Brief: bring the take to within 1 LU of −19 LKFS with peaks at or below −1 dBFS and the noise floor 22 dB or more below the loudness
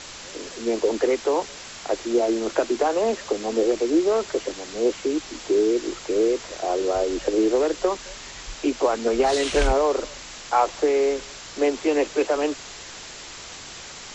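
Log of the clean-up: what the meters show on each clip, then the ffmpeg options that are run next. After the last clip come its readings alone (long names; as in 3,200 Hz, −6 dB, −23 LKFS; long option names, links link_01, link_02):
background noise floor −40 dBFS; target noise floor −46 dBFS; integrated loudness −23.5 LKFS; sample peak −7.5 dBFS; target loudness −19.0 LKFS
→ -af "afftdn=noise_reduction=6:noise_floor=-40"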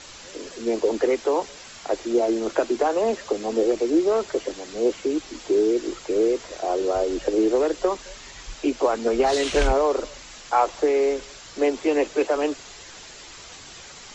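background noise floor −43 dBFS; target noise floor −46 dBFS
→ -af "afftdn=noise_reduction=6:noise_floor=-43"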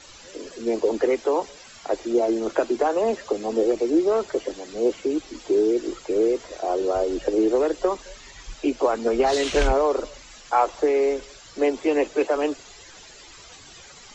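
background noise floor −46 dBFS; integrated loudness −23.5 LKFS; sample peak −8.0 dBFS; target loudness −19.0 LKFS
→ -af "volume=4.5dB"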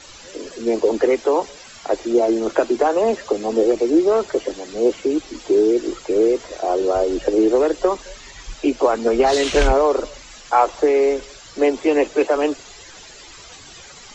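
integrated loudness −19.0 LKFS; sample peak −3.5 dBFS; background noise floor −42 dBFS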